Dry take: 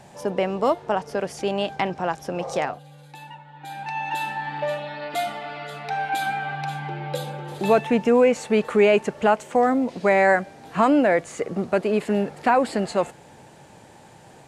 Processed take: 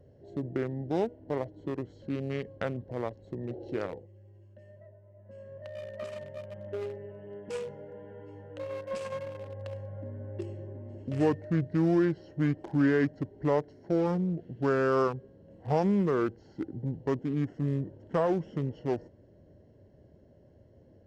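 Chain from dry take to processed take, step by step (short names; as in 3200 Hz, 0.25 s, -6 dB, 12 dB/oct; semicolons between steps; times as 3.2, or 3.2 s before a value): Wiener smoothing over 25 samples; tone controls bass +2 dB, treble +4 dB; wide varispeed 0.687×; gain -8.5 dB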